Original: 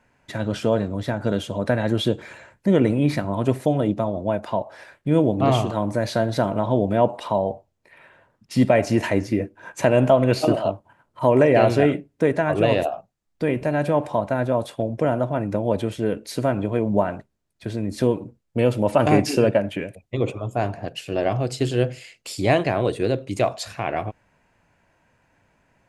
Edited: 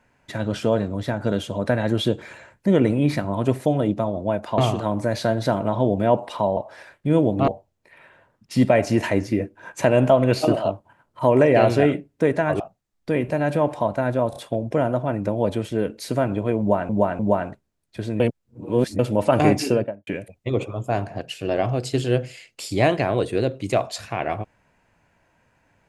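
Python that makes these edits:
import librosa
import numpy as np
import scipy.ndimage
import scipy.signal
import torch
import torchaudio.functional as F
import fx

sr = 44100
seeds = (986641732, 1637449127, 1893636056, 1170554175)

y = fx.studio_fade_out(x, sr, start_s=19.28, length_s=0.46)
y = fx.edit(y, sr, fx.move(start_s=4.58, length_s=0.91, to_s=7.48),
    fx.cut(start_s=12.6, length_s=0.33),
    fx.stutter(start_s=14.63, slice_s=0.03, count=3),
    fx.repeat(start_s=16.86, length_s=0.3, count=3),
    fx.reverse_span(start_s=17.87, length_s=0.79), tone=tone)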